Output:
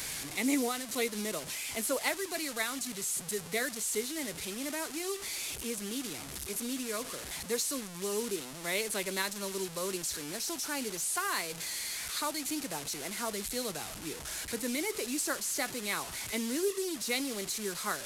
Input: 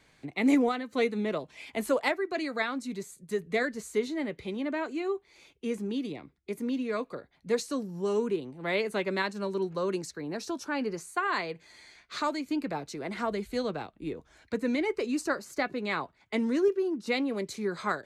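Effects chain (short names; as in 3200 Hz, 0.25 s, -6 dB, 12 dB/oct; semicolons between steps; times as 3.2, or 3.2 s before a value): delta modulation 64 kbps, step -33.5 dBFS; pre-emphasis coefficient 0.8; gain +7 dB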